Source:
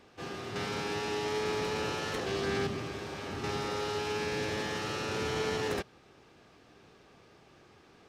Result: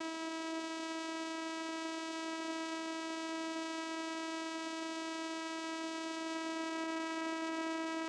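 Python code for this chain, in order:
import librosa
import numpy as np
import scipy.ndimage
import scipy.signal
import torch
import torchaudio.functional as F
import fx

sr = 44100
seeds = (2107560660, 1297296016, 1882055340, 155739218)

y = np.sign(x) * np.sqrt(np.mean(np.square(x)))
y = scipy.signal.sosfilt(scipy.signal.butter(4, 180.0, 'highpass', fs=sr, output='sos'), y)
y = fx.peak_eq(y, sr, hz=1700.0, db=-9.5, octaves=1.0)
y = y + 10.0 ** (-11.0 / 20.0) * np.pad(y, (int(599 * sr / 1000.0), 0))[:len(y)]
y = fx.filter_sweep_lowpass(y, sr, from_hz=4600.0, to_hz=860.0, start_s=6.0, end_s=6.93, q=1.1)
y = (np.mod(10.0 ** (38.5 / 20.0) * y + 1.0, 2.0) - 1.0) / 10.0 ** (38.5 / 20.0)
y = fx.vocoder(y, sr, bands=4, carrier='saw', carrier_hz=324.0)
y = y * librosa.db_to_amplitude(5.0)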